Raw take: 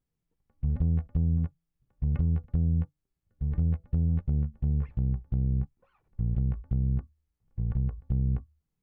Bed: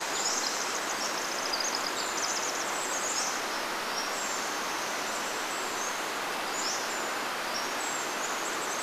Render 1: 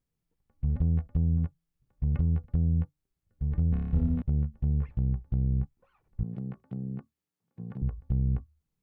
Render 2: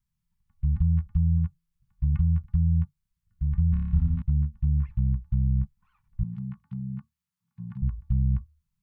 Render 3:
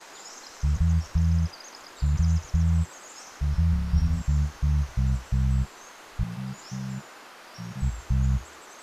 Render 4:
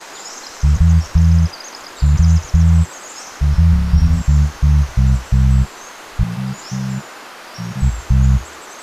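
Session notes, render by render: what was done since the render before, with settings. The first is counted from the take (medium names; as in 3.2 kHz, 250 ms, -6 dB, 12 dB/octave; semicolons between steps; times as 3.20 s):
3.70–4.22 s: flutter echo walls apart 4.9 m, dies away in 1.4 s; 6.23–7.82 s: high-pass 160 Hz 24 dB/octave
elliptic band-stop 200–940 Hz, stop band 40 dB; bass shelf 180 Hz +5 dB
add bed -14 dB
trim +11.5 dB; peak limiter -3 dBFS, peak gain reduction 2.5 dB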